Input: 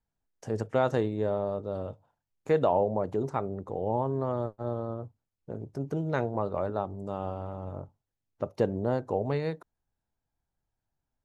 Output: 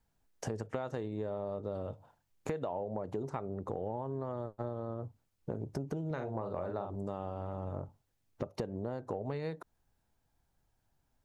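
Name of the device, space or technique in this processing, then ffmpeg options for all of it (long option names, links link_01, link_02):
serial compression, peaks first: -filter_complex "[0:a]asettb=1/sr,asplit=3[link_01][link_02][link_03];[link_01]atrim=end=6.064[link_04];[link_02]atrim=start=6.06:end=6.96,asetpts=PTS-STARTPTS,afade=type=in:duration=0.004:curve=qsin,afade=type=out:start_time=0.896:duration=0.004:curve=qsin,asplit=2[link_05][link_06];[link_06]adelay=45,volume=-6dB[link_07];[link_05][link_07]amix=inputs=2:normalize=0,atrim=end_sample=39690[link_08];[link_03]atrim=start=6.956[link_09];[link_04][link_08]acrossfade=duration=0.004:curve1=hsin:curve2=qsin[link_10];[link_10][link_09]acrossfade=duration=0.004:curve1=qsin:curve2=hsin,acompressor=threshold=-37dB:ratio=6,acompressor=threshold=-45dB:ratio=2,volume=8dB"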